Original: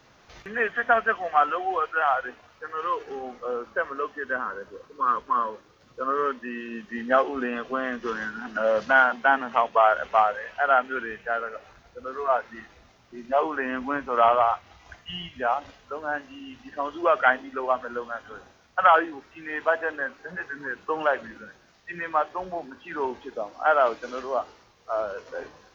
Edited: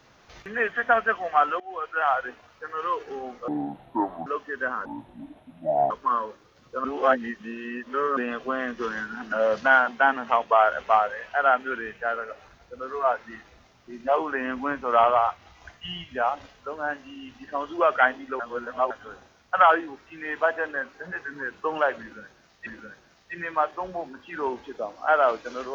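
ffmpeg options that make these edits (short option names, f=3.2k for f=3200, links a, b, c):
-filter_complex "[0:a]asplit=11[a][b][c][d][e][f][g][h][i][j][k];[a]atrim=end=1.6,asetpts=PTS-STARTPTS,afade=t=out:st=1.596:d=0.004:c=hsin:silence=0.0944061[l];[b]atrim=start=1.6:end=3.484,asetpts=PTS-STARTPTS,afade=t=in:d=0.47:silence=0.0944061[m];[c]atrim=start=3.48:end=3.95,asetpts=PTS-STARTPTS,asetrate=26460,aresample=44100[n];[d]atrim=start=3.946:end=4.544[o];[e]atrim=start=4.54:end=5.15,asetpts=PTS-STARTPTS,asetrate=25578,aresample=44100,atrim=end_sample=46381,asetpts=PTS-STARTPTS[p];[f]atrim=start=5.146:end=6.092[q];[g]atrim=start=6.088:end=7.412,asetpts=PTS-STARTPTS,areverse[r];[h]atrim=start=7.408:end=17.642[s];[i]atrim=start=17.638:end=18.152,asetpts=PTS-STARTPTS,areverse[t];[j]atrim=start=18.148:end=21.912[u];[k]atrim=start=21.238[v];[l][m]concat=n=2:v=0:a=1[w];[w][n]acrossfade=d=0.004:c1=hsin:c2=hsin[x];[x][o]acrossfade=d=0.004:c1=hsin:c2=hsin[y];[y][p]acrossfade=d=0.004:c1=hsin:c2=hsin[z];[z][q]acrossfade=d=0.004:c1=hsin:c2=hsin[aa];[aa][r]acrossfade=d=0.004:c1=hsin:c2=hsin[ab];[ab][s]acrossfade=d=0.004:c1=hsin:c2=hsin[ac];[ac][t]acrossfade=d=0.004:c1=hsin:c2=hsin[ad];[ad][u]acrossfade=d=0.004:c1=hsin:c2=hsin[ae];[ae][v]acrossfade=d=0.004:c1=hsin:c2=hsin"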